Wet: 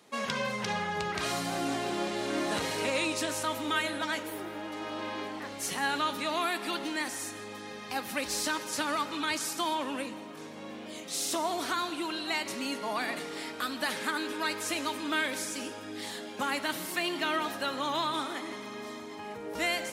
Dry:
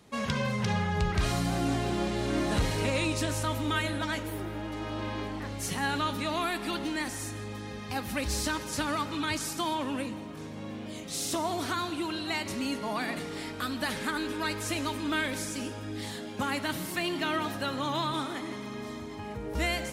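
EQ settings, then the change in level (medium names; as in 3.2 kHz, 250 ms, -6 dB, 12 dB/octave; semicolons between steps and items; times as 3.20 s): Bessel high-pass 350 Hz, order 2; +1.0 dB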